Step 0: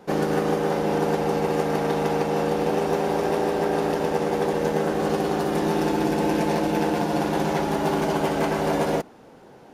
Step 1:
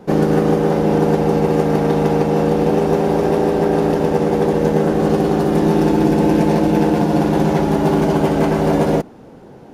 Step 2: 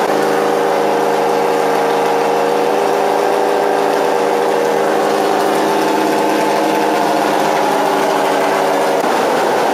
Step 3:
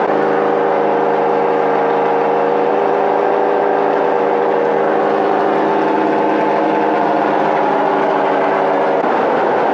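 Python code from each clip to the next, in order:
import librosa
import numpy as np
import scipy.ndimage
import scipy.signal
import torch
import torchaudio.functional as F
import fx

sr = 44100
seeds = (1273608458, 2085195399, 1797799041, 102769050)

y1 = fx.low_shelf(x, sr, hz=470.0, db=11.0)
y1 = y1 * librosa.db_to_amplitude(1.5)
y2 = scipy.signal.sosfilt(scipy.signal.butter(2, 670.0, 'highpass', fs=sr, output='sos'), y1)
y2 = fx.env_flatten(y2, sr, amount_pct=100)
y2 = y2 * librosa.db_to_amplitude(6.5)
y3 = scipy.signal.sosfilt(scipy.signal.butter(2, 2100.0, 'lowpass', fs=sr, output='sos'), y2)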